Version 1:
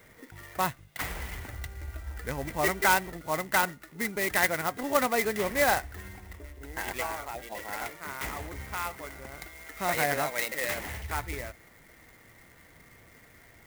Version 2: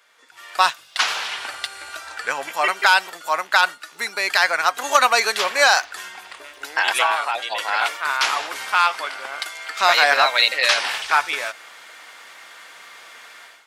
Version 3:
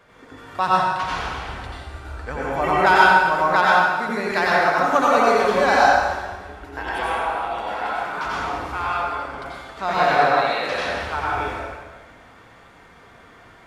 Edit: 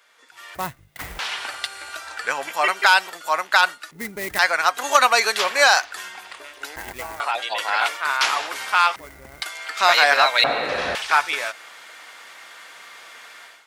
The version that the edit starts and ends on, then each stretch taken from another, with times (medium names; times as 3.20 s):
2
0.55–1.19 s: from 1
3.91–4.39 s: from 1
6.76–7.20 s: from 1
8.96–9.42 s: from 1
10.44–10.95 s: from 3